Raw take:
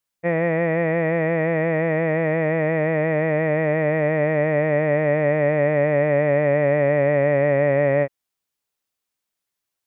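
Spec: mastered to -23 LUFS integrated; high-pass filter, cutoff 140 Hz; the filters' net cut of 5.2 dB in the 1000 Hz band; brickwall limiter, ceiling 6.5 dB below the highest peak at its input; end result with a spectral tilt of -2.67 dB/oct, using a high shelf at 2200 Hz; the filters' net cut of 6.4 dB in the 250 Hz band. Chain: HPF 140 Hz; bell 250 Hz -9 dB; bell 1000 Hz -8.5 dB; high shelf 2200 Hz +7 dB; gain +5 dB; limiter -14 dBFS

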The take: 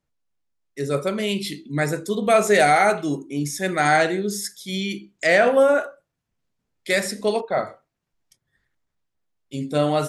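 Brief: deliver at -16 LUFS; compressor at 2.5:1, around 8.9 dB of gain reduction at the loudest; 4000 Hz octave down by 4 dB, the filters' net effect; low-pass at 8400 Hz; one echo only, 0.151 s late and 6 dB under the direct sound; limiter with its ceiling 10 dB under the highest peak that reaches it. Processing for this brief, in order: LPF 8400 Hz; bell 4000 Hz -5 dB; compressor 2.5:1, threshold -26 dBFS; limiter -24 dBFS; echo 0.151 s -6 dB; gain +16.5 dB

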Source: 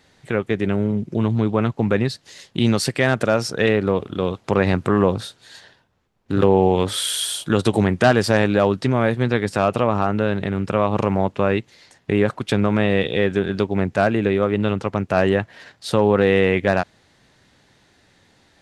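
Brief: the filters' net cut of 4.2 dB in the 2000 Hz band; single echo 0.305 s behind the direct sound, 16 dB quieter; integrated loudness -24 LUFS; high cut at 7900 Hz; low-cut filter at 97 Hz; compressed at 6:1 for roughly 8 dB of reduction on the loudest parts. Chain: HPF 97 Hz; LPF 7900 Hz; bell 2000 Hz -5.5 dB; compressor 6:1, threshold -20 dBFS; echo 0.305 s -16 dB; gain +2 dB

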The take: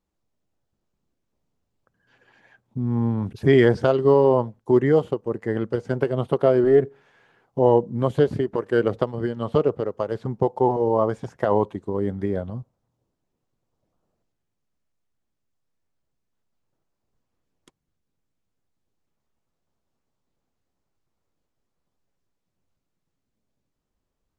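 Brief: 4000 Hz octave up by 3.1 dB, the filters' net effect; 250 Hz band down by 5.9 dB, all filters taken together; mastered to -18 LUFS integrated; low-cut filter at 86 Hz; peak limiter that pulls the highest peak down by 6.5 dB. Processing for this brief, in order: HPF 86 Hz; bell 250 Hz -8.5 dB; bell 4000 Hz +4.5 dB; gain +8 dB; limiter -4.5 dBFS

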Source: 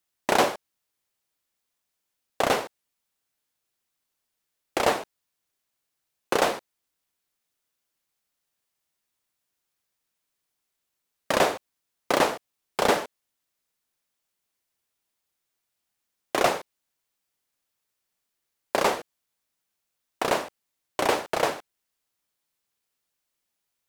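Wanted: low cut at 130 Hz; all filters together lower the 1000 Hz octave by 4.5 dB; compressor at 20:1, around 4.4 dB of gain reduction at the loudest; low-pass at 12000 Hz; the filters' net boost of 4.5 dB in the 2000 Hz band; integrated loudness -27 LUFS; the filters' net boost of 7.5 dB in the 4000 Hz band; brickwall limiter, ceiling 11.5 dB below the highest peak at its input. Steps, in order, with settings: HPF 130 Hz; LPF 12000 Hz; bell 1000 Hz -8 dB; bell 2000 Hz +6 dB; bell 4000 Hz +8 dB; compressor 20:1, threshold -20 dBFS; gain +5.5 dB; limiter -12.5 dBFS

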